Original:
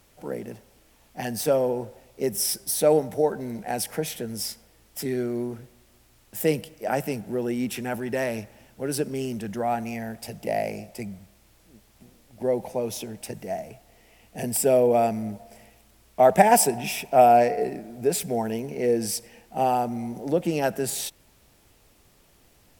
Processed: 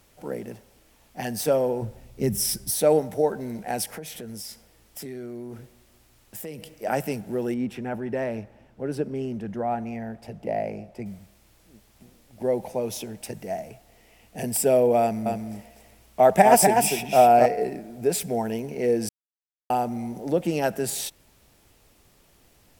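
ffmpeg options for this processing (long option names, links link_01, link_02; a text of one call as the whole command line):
ffmpeg -i in.wav -filter_complex "[0:a]asplit=3[link_01][link_02][link_03];[link_01]afade=type=out:start_time=1.81:duration=0.02[link_04];[link_02]asubboost=boost=7.5:cutoff=210,afade=type=in:start_time=1.81:duration=0.02,afade=type=out:start_time=2.7:duration=0.02[link_05];[link_03]afade=type=in:start_time=2.7:duration=0.02[link_06];[link_04][link_05][link_06]amix=inputs=3:normalize=0,asettb=1/sr,asplit=3[link_07][link_08][link_09];[link_07]atrim=end=3.854[link_10];[link_08]atrim=start=3.85:end=6.73,asetpts=PTS-STARTPTS,afade=type=in:duration=0.004:curve=qsin,afade=type=out:start_time=2.876:duration=0.004:curve=qsin,acompressor=threshold=-34dB:ratio=5:attack=3.2:release=140:knee=1:detection=peak[link_11];[link_09]atrim=start=6.726[link_12];[link_10][link_11]acrossfade=duration=0.004:curve1=hsin:curve2=qsin[link_13];[link_13][link_12]acrossfade=duration=0.004:curve1=qsin:curve2=hsin,asettb=1/sr,asplit=3[link_14][link_15][link_16];[link_14]atrim=end=7.544[link_17];[link_15]atrim=start=7.54:end=11.06,asetpts=PTS-STARTPTS,afade=type=in:duration=0.004:curve=qsin,afade=type=out:start_time=3.516:duration=0.004:curve=qsin,lowpass=frequency=1200:poles=1[link_18];[link_16]atrim=start=11.056[link_19];[link_17][link_18]acrossfade=duration=0.004:curve1=hsin:curve2=qsin[link_20];[link_20][link_19]acrossfade=duration=0.004:curve1=qsin:curve2=hsin,asettb=1/sr,asplit=3[link_21][link_22][link_23];[link_21]atrim=end=15.014[link_24];[link_22]atrim=start=15.01:end=17.46,asetpts=PTS-STARTPTS,afade=type=in:duration=0.004:curve=qsin,afade=type=out:start_time=2.446:duration=0.004:curve=qsin,aecho=1:1:248:0.631,atrim=end_sample=108045[link_25];[link_23]atrim=start=17.456[link_26];[link_24][link_25]acrossfade=duration=0.004:curve1=hsin:curve2=qsin[link_27];[link_27][link_26]acrossfade=duration=0.004:curve1=qsin:curve2=hsin,asplit=3[link_28][link_29][link_30];[link_28]atrim=end=19.09,asetpts=PTS-STARTPTS,afade=type=out:start_time=19.086:duration=0.004:curve=hsin[link_31];[link_29]atrim=start=19.09:end=19.7,asetpts=PTS-STARTPTS,volume=0[link_32];[link_30]atrim=start=19.7,asetpts=PTS-STARTPTS,afade=type=in:duration=0.004:curve=hsin[link_33];[link_31][link_32][link_33]concat=n=3:v=0:a=1" out.wav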